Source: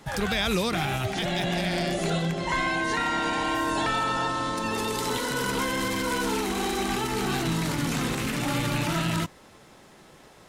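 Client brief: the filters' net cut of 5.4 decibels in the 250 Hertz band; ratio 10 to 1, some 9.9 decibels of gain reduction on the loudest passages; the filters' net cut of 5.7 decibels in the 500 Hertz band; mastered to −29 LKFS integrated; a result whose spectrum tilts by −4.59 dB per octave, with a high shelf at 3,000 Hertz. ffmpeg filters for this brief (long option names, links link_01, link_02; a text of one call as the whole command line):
ffmpeg -i in.wav -af "equalizer=frequency=250:width_type=o:gain=-6.5,equalizer=frequency=500:width_type=o:gain=-5,highshelf=frequency=3000:gain=-9,acompressor=threshold=-36dB:ratio=10,volume=10.5dB" out.wav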